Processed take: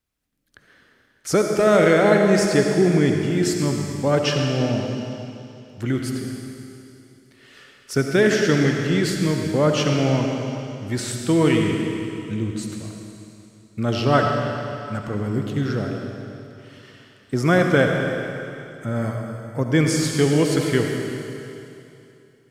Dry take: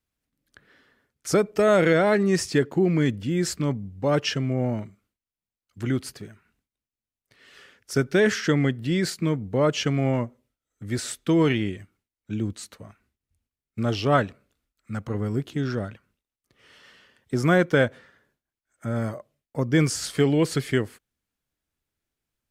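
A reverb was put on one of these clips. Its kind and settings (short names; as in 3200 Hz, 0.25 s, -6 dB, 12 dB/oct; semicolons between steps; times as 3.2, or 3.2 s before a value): digital reverb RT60 2.8 s, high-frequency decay 1×, pre-delay 30 ms, DRR 2 dB; gain +2 dB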